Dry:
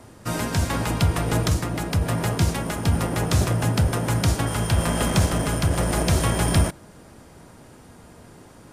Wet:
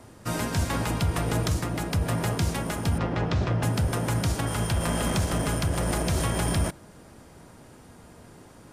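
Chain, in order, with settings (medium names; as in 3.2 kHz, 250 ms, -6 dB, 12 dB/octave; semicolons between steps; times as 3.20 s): 2.98–3.63 s: Bessel low-pass 3.4 kHz, order 4; peak limiter -14 dBFS, peak gain reduction 5.5 dB; trim -2.5 dB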